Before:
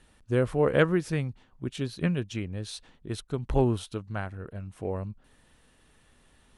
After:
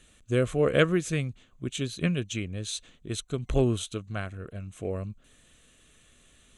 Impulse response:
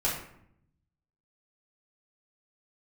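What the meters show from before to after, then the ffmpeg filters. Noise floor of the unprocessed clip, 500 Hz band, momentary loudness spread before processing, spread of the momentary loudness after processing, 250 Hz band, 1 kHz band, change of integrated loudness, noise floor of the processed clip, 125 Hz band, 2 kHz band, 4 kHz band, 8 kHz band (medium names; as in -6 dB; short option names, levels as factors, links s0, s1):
-63 dBFS, 0.0 dB, 15 LU, 13 LU, 0.0 dB, -3.0 dB, 0.0 dB, -61 dBFS, 0.0 dB, +1.0 dB, +5.5 dB, +8.5 dB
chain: -af "superequalizer=9b=0.355:12b=1.78:13b=2:15b=3.55:16b=1.58"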